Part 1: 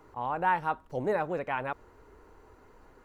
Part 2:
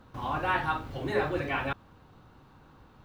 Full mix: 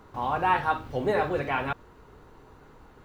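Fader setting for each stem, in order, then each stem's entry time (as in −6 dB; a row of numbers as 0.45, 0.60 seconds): +2.0, −1.0 decibels; 0.00, 0.00 seconds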